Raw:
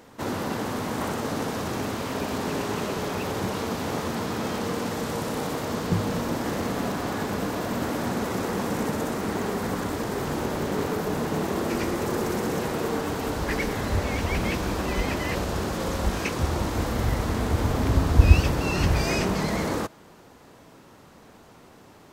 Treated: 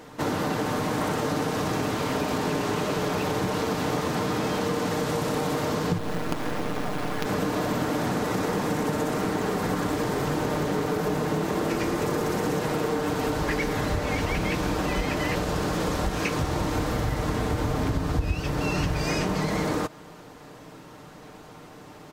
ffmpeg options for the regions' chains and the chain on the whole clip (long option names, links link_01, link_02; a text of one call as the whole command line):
ffmpeg -i in.wav -filter_complex "[0:a]asettb=1/sr,asplit=3[link_01][link_02][link_03];[link_01]atrim=end=5.984[link_04];[link_02]atrim=start=5.98:end=7.26,asetpts=PTS-STARTPTS,afade=type=in:duration=0.004:curve=qsin,afade=type=out:start_time=1.276:duration=0.004:curve=qsin,lowpass=4400,acrusher=bits=4:dc=4:mix=0:aa=0.000001[link_05];[link_03]atrim=start=7.256[link_06];[link_04][link_05]acrossfade=duration=0.004:curve1=hsin:curve2=qsin[link_07];[link_07][link_06]acrossfade=duration=0.004:curve1=qsin:curve2=hsin,highshelf=frequency=8000:gain=-4,aecho=1:1:6.6:0.42,acompressor=threshold=-27dB:ratio=6,volume=4.5dB" out.wav